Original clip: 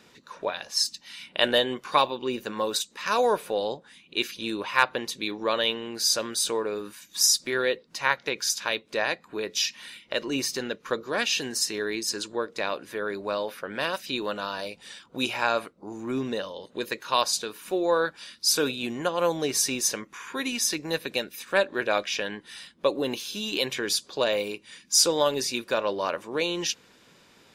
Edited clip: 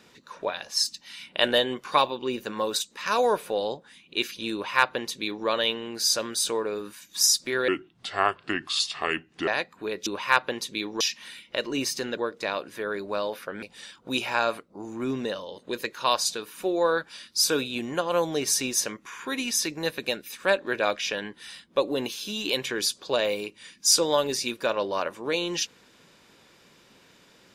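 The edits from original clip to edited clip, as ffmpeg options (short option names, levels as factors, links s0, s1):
-filter_complex "[0:a]asplit=7[s0][s1][s2][s3][s4][s5][s6];[s0]atrim=end=7.684[s7];[s1]atrim=start=7.68:end=8.99,asetpts=PTS-STARTPTS,asetrate=32193,aresample=44100,atrim=end_sample=79138,asetpts=PTS-STARTPTS[s8];[s2]atrim=start=8.986:end=9.582[s9];[s3]atrim=start=4.528:end=5.472[s10];[s4]atrim=start=9.578:end=10.752[s11];[s5]atrim=start=12.328:end=13.782[s12];[s6]atrim=start=14.698[s13];[s7][s8]acrossfade=d=0.004:c1=hsin:c2=hsin[s14];[s14][s9]acrossfade=d=0.004:c1=hsin:c2=hsin[s15];[s15][s10]acrossfade=d=0.004:c1=hsin:c2=hsin[s16];[s16][s11]acrossfade=d=0.004:c1=hsin:c2=hsin[s17];[s17][s12]acrossfade=d=0.004:c1=hsin:c2=hsin[s18];[s18][s13]acrossfade=d=0.004:c1=hsin:c2=hsin"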